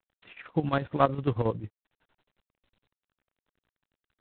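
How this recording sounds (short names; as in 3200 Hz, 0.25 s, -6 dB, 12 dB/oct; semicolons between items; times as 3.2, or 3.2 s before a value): chopped level 11 Hz, depth 65%, duty 60%; G.726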